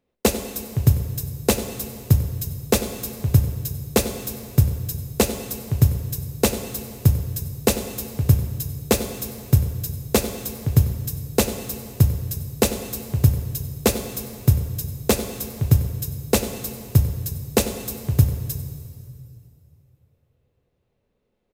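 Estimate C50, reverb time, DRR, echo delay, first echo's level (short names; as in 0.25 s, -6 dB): 8.0 dB, 2.4 s, 7.5 dB, 96 ms, -16.0 dB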